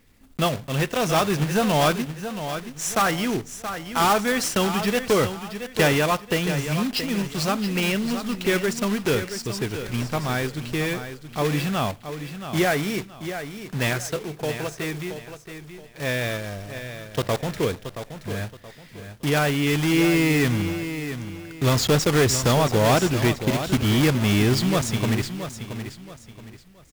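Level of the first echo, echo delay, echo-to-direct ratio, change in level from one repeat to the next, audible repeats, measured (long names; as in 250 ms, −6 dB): −10.0 dB, 675 ms, −9.5 dB, −10.0 dB, 3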